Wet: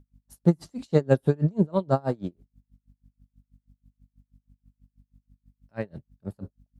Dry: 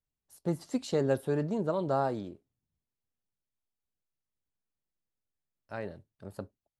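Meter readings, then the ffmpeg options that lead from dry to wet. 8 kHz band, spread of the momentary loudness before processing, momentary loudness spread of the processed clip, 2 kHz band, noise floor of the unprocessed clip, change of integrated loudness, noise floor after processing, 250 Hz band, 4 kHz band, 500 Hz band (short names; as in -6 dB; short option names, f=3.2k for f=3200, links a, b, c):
n/a, 17 LU, 18 LU, +3.0 dB, under -85 dBFS, +6.0 dB, -83 dBFS, +7.5 dB, -1.0 dB, +4.5 dB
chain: -af "equalizer=f=160:t=o:w=1.5:g=9.5,aeval=exprs='val(0)+0.00112*(sin(2*PI*50*n/s)+sin(2*PI*2*50*n/s)/2+sin(2*PI*3*50*n/s)/3+sin(2*PI*4*50*n/s)/4+sin(2*PI*5*50*n/s)/5)':c=same,aeval=exprs='val(0)*pow(10,-32*(0.5-0.5*cos(2*PI*6.2*n/s))/20)':c=same,volume=7.5dB"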